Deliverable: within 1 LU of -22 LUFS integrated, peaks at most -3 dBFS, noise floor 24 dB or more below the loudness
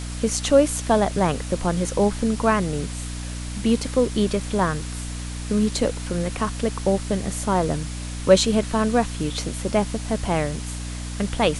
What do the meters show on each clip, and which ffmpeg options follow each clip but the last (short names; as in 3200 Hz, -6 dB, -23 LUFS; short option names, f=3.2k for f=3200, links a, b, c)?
hum 60 Hz; harmonics up to 300 Hz; hum level -29 dBFS; noise floor -31 dBFS; noise floor target -47 dBFS; loudness -23.0 LUFS; peak -1.5 dBFS; loudness target -22.0 LUFS
-> -af "bandreject=f=60:t=h:w=6,bandreject=f=120:t=h:w=6,bandreject=f=180:t=h:w=6,bandreject=f=240:t=h:w=6,bandreject=f=300:t=h:w=6"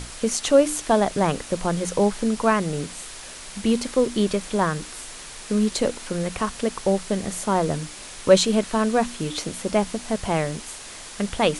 hum none; noise floor -39 dBFS; noise floor target -47 dBFS
-> -af "afftdn=nr=8:nf=-39"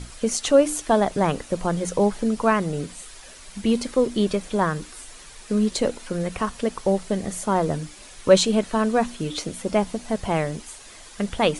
noise floor -44 dBFS; noise floor target -48 dBFS
-> -af "afftdn=nr=6:nf=-44"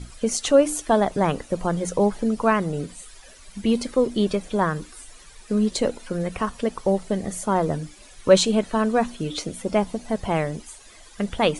noise floor -48 dBFS; loudness -23.5 LUFS; peak -2.5 dBFS; loudness target -22.0 LUFS
-> -af "volume=1.5dB,alimiter=limit=-3dB:level=0:latency=1"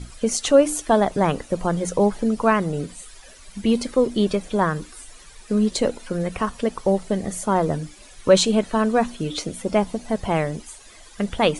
loudness -22.0 LUFS; peak -3.0 dBFS; noise floor -46 dBFS